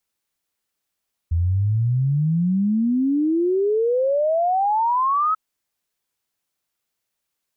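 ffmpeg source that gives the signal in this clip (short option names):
-f lavfi -i "aevalsrc='0.15*clip(min(t,4.04-t)/0.01,0,1)*sin(2*PI*81*4.04/log(1300/81)*(exp(log(1300/81)*t/4.04)-1))':d=4.04:s=44100"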